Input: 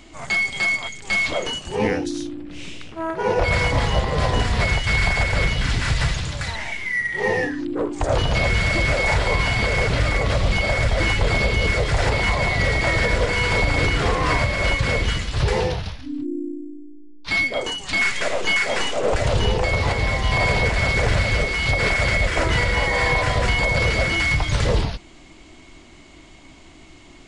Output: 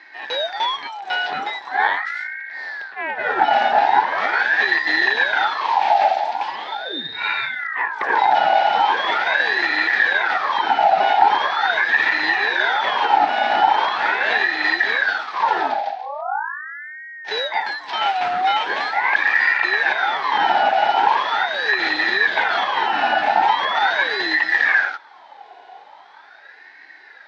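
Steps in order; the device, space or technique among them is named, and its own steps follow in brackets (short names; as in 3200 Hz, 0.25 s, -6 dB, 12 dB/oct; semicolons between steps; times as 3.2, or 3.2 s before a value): voice changer toy (ring modulator with a swept carrier 1300 Hz, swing 45%, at 0.41 Hz; speaker cabinet 450–3900 Hz, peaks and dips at 510 Hz -4 dB, 820 Hz +9 dB, 1200 Hz -9 dB, 1700 Hz +4 dB, 2900 Hz -7 dB); gain +3.5 dB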